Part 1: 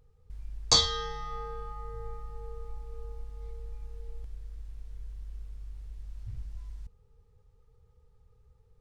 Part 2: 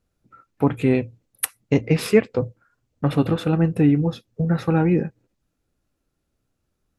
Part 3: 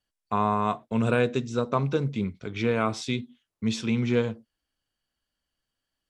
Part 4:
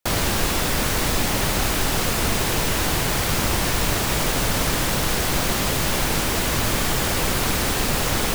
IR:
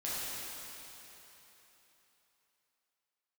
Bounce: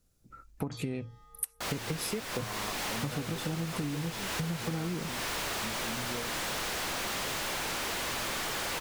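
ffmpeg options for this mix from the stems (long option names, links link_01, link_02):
-filter_complex "[0:a]volume=-19.5dB[link_01];[1:a]bass=frequency=250:gain=4,treble=frequency=4000:gain=12,acompressor=threshold=-16dB:ratio=6,volume=-2.5dB[link_02];[2:a]adelay=2000,volume=-10.5dB[link_03];[3:a]asplit=2[link_04][link_05];[link_05]highpass=frequency=720:poles=1,volume=26dB,asoftclip=type=tanh:threshold=-7.5dB[link_06];[link_04][link_06]amix=inputs=2:normalize=0,lowpass=frequency=5300:poles=1,volume=-6dB,adelay=1550,volume=-14.5dB[link_07];[link_01][link_02][link_03][link_07]amix=inputs=4:normalize=0,acompressor=threshold=-32dB:ratio=6"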